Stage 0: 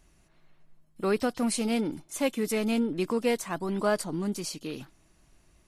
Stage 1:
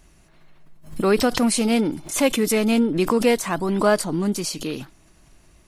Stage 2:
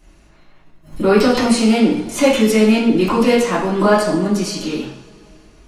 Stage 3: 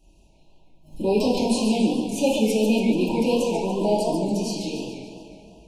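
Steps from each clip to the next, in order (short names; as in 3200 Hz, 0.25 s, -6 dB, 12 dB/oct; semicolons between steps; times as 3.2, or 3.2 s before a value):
backwards sustainer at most 120 dB/s; gain +8 dB
reverb, pre-delay 3 ms, DRR -9.5 dB; gain -4 dB
analogue delay 0.183 s, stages 4096, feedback 74%, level -17.5 dB; FFT band-reject 1000–2400 Hz; warbling echo 0.143 s, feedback 56%, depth 194 cents, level -7 dB; gain -8 dB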